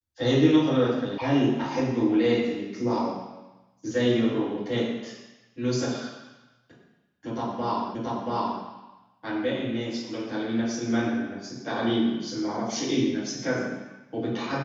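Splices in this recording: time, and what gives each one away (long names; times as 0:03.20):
0:01.18: cut off before it has died away
0:07.95: the same again, the last 0.68 s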